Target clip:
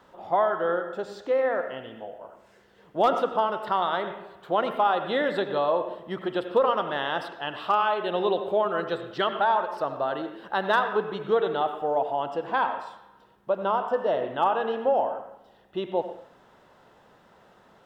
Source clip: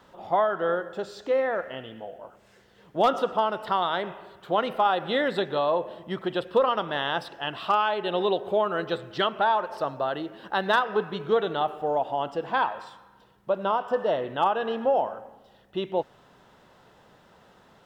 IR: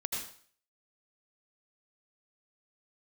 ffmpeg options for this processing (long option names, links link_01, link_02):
-filter_complex "[0:a]asplit=2[link_01][link_02];[link_02]highpass=200[link_03];[1:a]atrim=start_sample=2205,lowpass=2500[link_04];[link_03][link_04]afir=irnorm=-1:irlink=0,volume=-6.5dB[link_05];[link_01][link_05]amix=inputs=2:normalize=0,volume=-3dB"